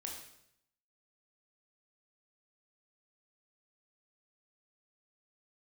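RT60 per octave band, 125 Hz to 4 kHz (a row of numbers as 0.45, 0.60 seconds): 0.90, 0.80, 0.80, 0.70, 0.75, 0.70 seconds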